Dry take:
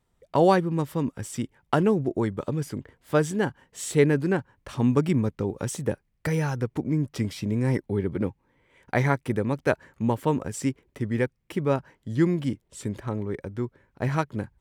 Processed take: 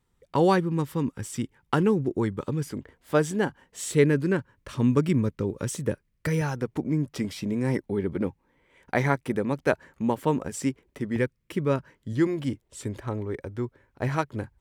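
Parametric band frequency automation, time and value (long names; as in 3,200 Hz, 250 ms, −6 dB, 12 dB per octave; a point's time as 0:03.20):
parametric band −13 dB 0.27 octaves
650 Hz
from 0:02.71 120 Hz
from 0:03.91 770 Hz
from 0:06.41 110 Hz
from 0:11.16 770 Hz
from 0:12.13 180 Hz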